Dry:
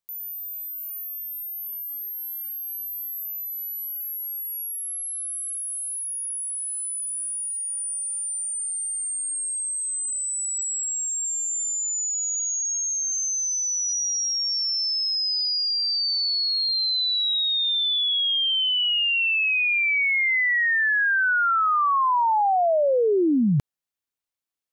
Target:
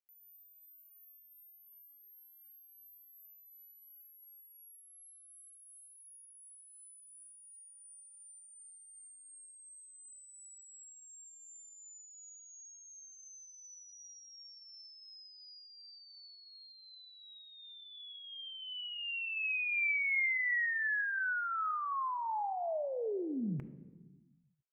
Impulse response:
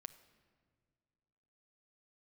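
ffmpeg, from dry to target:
-filter_complex "[0:a]highshelf=f=3k:t=q:w=3:g=-9[a];[1:a]atrim=start_sample=2205,asetrate=61740,aresample=44100[b];[a][b]afir=irnorm=-1:irlink=0,volume=-8dB"

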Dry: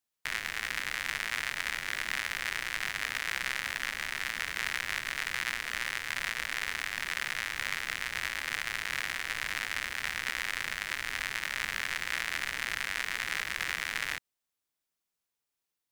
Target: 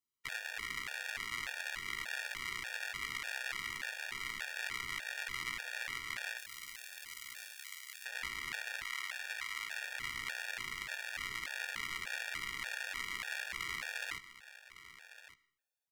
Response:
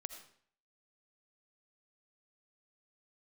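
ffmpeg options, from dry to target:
-filter_complex "[0:a]asettb=1/sr,asplit=3[a][b][c];[a]atrim=end=6.374[d];[b]atrim=start=6.37:end=8.06,asetpts=PTS-STARTPTS,afade=t=in:d=0.004:c=qsin,afade=t=out:st=1.686:d=0.004:c=qsin,aderivative[e];[c]atrim=start=8.056[f];[d][e]acrossfade=d=0.004:c1=hsin:c2=qsin[g];[g][f]acrossfade=d=0.004:c1=qsin:c2=hsin,asettb=1/sr,asplit=3[h][i][j];[h]atrim=end=8.834[k];[i]atrim=start=8.83:end=9.82,asetpts=PTS-STARTPTS,afade=t=in:d=0.004:c=qsin,afade=t=out:st=0.986:d=0.004:c=qsin,highpass=680[l];[j]atrim=start=9.816[m];[k][l]acrossfade=d=0.004:c1=hsin:c2=qsin[n];[n][m]acrossfade=d=0.004:c1=qsin:c2=hsin,aecho=1:1:1157:0.188,asplit=2[o][p];[1:a]atrim=start_sample=2205,lowpass=7.8k,adelay=16[q];[p][q]afir=irnorm=-1:irlink=0,volume=-6.5dB[r];[o][r]amix=inputs=2:normalize=0,afftfilt=real='re*gt(sin(2*PI*1.7*pts/sr)*(1-2*mod(floor(b*sr/1024/470),2)),0)':imag='im*gt(sin(2*PI*1.7*pts/sr)*(1-2*mod(floor(b*sr/1024/470),2)),0)':win_size=1024:overlap=0.75,volume=-4dB"

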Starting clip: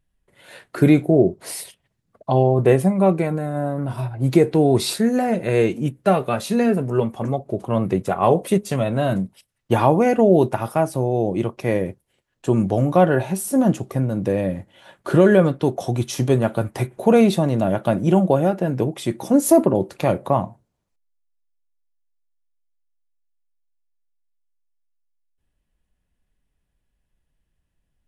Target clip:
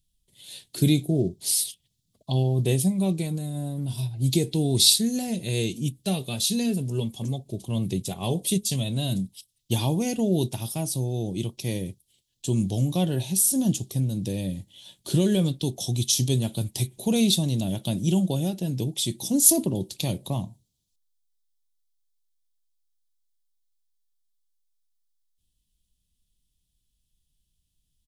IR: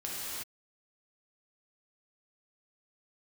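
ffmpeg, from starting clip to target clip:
-af "firequalizer=gain_entry='entry(130,0);entry(540,-14);entry(920,-14);entry(1300,-23);entry(3400,11)':delay=0.05:min_phase=1,volume=-2.5dB"

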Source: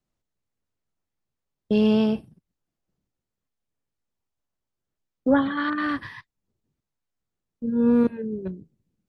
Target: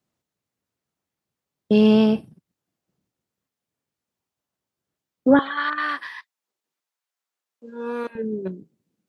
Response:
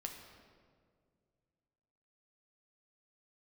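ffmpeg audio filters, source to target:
-af "asetnsamples=n=441:p=0,asendcmd='5.39 highpass f 780;8.15 highpass f 210',highpass=110,volume=4.5dB"

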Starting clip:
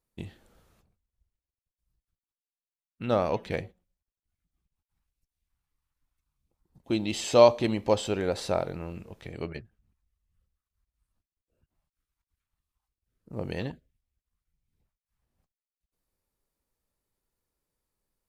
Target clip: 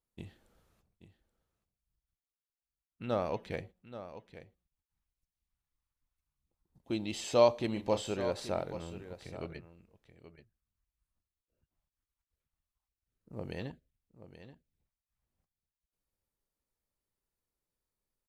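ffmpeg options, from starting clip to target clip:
-filter_complex "[0:a]asettb=1/sr,asplit=3[a][b][c];[a]atrim=end=7.734[d];[b]atrim=start=7.73:end=8.14,asetpts=PTS-STARTPTS,afade=t=in:d=0.004:c=qsin,afade=t=out:st=0.406:d=0.004:c=qsin,asplit=2[e][f];[f]adelay=34,volume=-8.5dB[g];[e][g]amix=inputs=2:normalize=0,atrim=end_sample=18081[h];[c]atrim=start=8.136[i];[d][h]acrossfade=d=0.004:c1=hsin:c2=qsin[j];[j][i]acrossfade=d=0.004:c1=qsin:c2=hsin,aecho=1:1:830:0.224,volume=-7dB"

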